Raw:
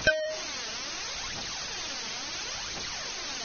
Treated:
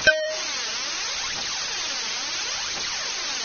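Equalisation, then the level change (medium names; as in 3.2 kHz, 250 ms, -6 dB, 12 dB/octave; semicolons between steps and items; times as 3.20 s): bass shelf 380 Hz -10 dB; band-stop 700 Hz, Q 12; +8.0 dB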